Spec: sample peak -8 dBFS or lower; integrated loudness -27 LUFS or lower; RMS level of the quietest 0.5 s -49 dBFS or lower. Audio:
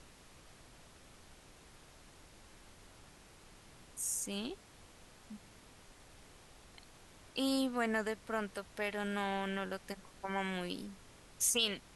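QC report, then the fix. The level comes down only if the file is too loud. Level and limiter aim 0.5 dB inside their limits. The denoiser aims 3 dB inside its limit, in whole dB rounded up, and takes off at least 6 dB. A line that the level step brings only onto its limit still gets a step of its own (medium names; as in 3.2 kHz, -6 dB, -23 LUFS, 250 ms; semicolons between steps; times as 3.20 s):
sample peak -18.5 dBFS: pass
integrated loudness -36.5 LUFS: pass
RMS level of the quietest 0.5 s -59 dBFS: pass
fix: none needed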